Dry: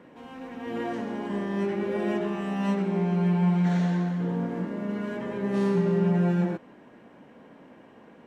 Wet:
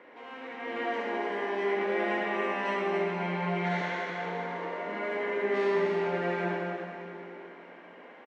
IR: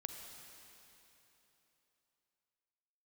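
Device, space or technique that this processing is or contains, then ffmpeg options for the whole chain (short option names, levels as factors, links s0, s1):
station announcement: -filter_complex "[0:a]asettb=1/sr,asplit=3[s0][s1][s2];[s0]atrim=end=3.814[s3];[s1]atrim=start=3.81:end=4.87,asetpts=PTS-STARTPTS,afade=t=in:d=0.004:c=qsin,afade=t=out:st=1.056:d=0.004:c=qsin,highpass=420[s4];[s2]atrim=start=4.866[s5];[s3][s4]acrossfade=d=0.004:c1=hsin:c2=qsin[s6];[s6][s5]acrossfade=d=0.004:c1=qsin:c2=hsin,highpass=420,lowpass=4000,equalizer=f=190:t=o:w=0.64:g=-5.5,equalizer=f=2100:t=o:w=0.23:g=9,aecho=1:1:72.89|282.8:0.562|0.501[s7];[1:a]atrim=start_sample=2205[s8];[s7][s8]afir=irnorm=-1:irlink=0,volume=1.78"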